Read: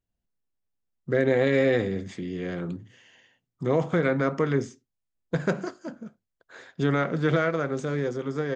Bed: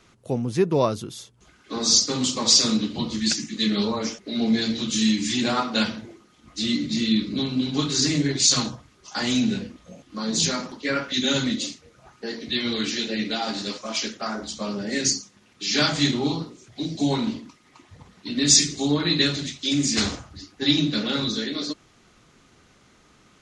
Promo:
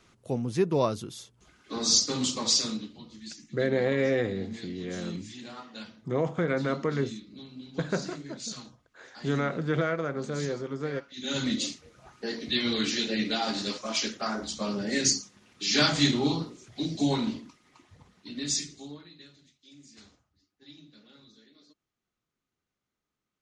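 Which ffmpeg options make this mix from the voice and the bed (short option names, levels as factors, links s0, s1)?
-filter_complex "[0:a]adelay=2450,volume=0.631[s0];[1:a]volume=4.73,afade=t=out:st=2.28:d=0.71:silence=0.16788,afade=t=in:st=11.16:d=0.42:silence=0.125893,afade=t=out:st=16.76:d=2.34:silence=0.0354813[s1];[s0][s1]amix=inputs=2:normalize=0"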